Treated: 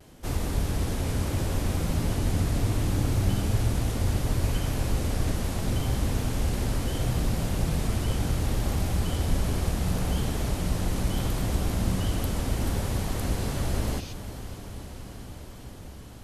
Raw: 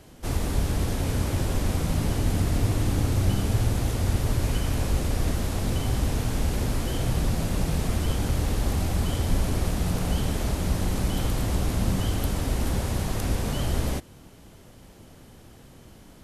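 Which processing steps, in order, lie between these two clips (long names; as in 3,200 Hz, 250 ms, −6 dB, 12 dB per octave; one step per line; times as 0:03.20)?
healed spectral selection 0:13.17–0:14.10, 2,300–6,600 Hz before
feedback delay with all-pass diffusion 504 ms, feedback 79%, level −13.5 dB
pitch vibrato 0.72 Hz 32 cents
level −2 dB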